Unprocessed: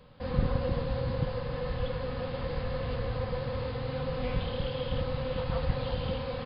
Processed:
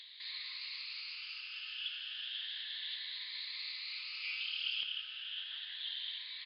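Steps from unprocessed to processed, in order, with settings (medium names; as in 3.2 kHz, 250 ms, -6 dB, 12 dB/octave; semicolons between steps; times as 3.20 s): drifting ripple filter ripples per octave 1, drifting +0.32 Hz, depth 13 dB; inverse Chebyshev high-pass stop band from 680 Hz, stop band 70 dB; treble shelf 4.6 kHz +5 dB, from 4.83 s -8.5 dB; upward compressor, threshold -51 dBFS; distance through air 300 m; trim +14 dB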